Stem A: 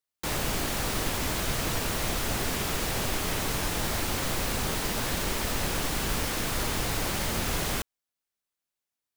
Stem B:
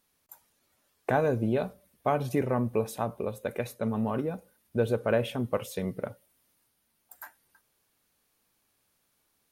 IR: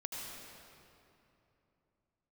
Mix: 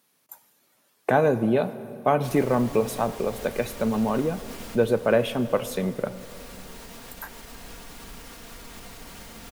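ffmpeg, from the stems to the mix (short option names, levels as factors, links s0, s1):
-filter_complex "[0:a]aecho=1:1:4.3:0.44,alimiter=limit=0.0668:level=0:latency=1:release=158,adelay=2000,volume=0.501,afade=t=out:st=4.21:d=0.65:silence=0.473151,asplit=2[s0][s1];[s1]volume=0.631[s2];[1:a]highpass=f=130:w=0.5412,highpass=f=130:w=1.3066,acontrast=56,volume=0.841,asplit=3[s3][s4][s5];[s4]volume=0.237[s6];[s5]apad=whole_len=492496[s7];[s0][s7]sidechaincompress=threshold=0.01:ratio=8:attack=5.7:release=189[s8];[2:a]atrim=start_sample=2205[s9];[s2][s6]amix=inputs=2:normalize=0[s10];[s10][s9]afir=irnorm=-1:irlink=0[s11];[s8][s3][s11]amix=inputs=3:normalize=0"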